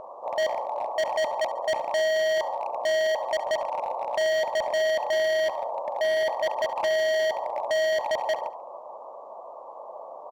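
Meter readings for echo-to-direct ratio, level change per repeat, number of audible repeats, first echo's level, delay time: -16.5 dB, -9.0 dB, 3, -17.0 dB, 70 ms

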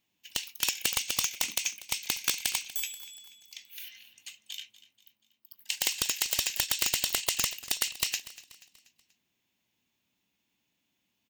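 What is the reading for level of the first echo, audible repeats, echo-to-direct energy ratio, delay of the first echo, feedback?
-17.5 dB, 3, -16.5 dB, 0.241 s, 46%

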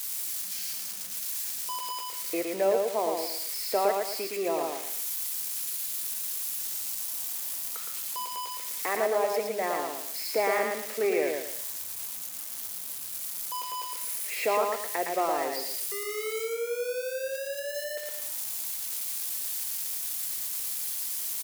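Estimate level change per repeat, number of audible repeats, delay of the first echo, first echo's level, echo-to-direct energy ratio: -9.5 dB, 3, 0.114 s, -3.5 dB, -3.0 dB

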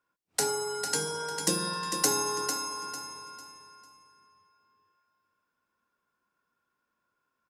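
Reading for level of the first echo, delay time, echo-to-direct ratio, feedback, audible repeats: -7.5 dB, 0.449 s, -7.0 dB, 31%, 3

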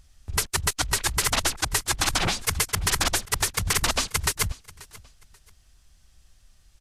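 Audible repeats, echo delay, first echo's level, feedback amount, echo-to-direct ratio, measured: 2, 0.535 s, -21.0 dB, 27%, -20.5 dB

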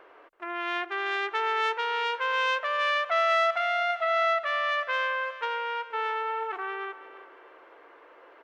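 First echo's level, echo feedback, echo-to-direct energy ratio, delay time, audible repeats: -15.0 dB, 38%, -14.5 dB, 0.329 s, 3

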